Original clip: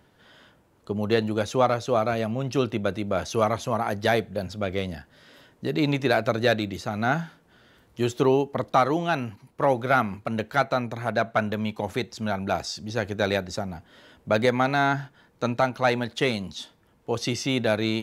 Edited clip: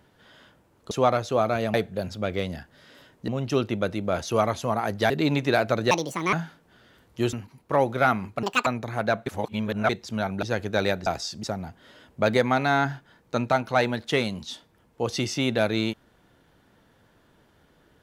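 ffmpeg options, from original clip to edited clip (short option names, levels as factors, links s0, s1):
-filter_complex "[0:a]asplit=15[s0][s1][s2][s3][s4][s5][s6][s7][s8][s9][s10][s11][s12][s13][s14];[s0]atrim=end=0.912[s15];[s1]atrim=start=1.478:end=2.312[s16];[s2]atrim=start=4.128:end=5.672[s17];[s3]atrim=start=2.308:end=4.132[s18];[s4]atrim=start=5.668:end=6.484[s19];[s5]atrim=start=6.48:end=7.13,asetpts=PTS-STARTPTS,asetrate=68355,aresample=44100[s20];[s6]atrim=start=7.126:end=8.132[s21];[s7]atrim=start=9.218:end=10.324[s22];[s8]atrim=start=10.32:end=10.75,asetpts=PTS-STARTPTS,asetrate=80703,aresample=44100,atrim=end_sample=10362,asetpts=PTS-STARTPTS[s23];[s9]atrim=start=10.746:end=11.352[s24];[s10]atrim=start=11.348:end=11.982,asetpts=PTS-STARTPTS,areverse[s25];[s11]atrim=start=11.978:end=12.512[s26];[s12]atrim=start=12.878:end=13.522[s27];[s13]atrim=start=12.508:end=12.882[s28];[s14]atrim=start=13.518[s29];[s15][s16]acrossfade=d=0.004:c1=hsin:c2=hsin[s30];[s30][s17]acrossfade=d=0.004:c1=hsin:c2=hsin[s31];[s31][s18]acrossfade=d=0.004:c1=hsin:c2=hsin[s32];[s32][s19]acrossfade=d=0.004:c1=hsin:c2=hsin[s33];[s33][s20]acrossfade=d=0.004:c1=hsin:c2=hsin[s34];[s34][s21]acrossfade=d=0.004:c1=hsin:c2=hsin[s35];[s35][s22]acrossfade=d=0.004:c1=hsin:c2=hsin[s36];[s36][s23]acrossfade=d=0.004:c1=hsin:c2=hsin[s37];[s37][s24]acrossfade=d=0.004:c1=hsin:c2=hsin[s38];[s38][s25]acrossfade=d=0.004:c1=hsin:c2=hsin[s39];[s39][s26]acrossfade=d=0.004:c1=hsin:c2=hsin[s40];[s40][s27]acrossfade=d=0.004:c1=hsin:c2=hsin[s41];[s41][s28]acrossfade=d=0.004:c1=hsin:c2=hsin[s42];[s42][s29]acrossfade=d=0.004:c1=hsin:c2=hsin"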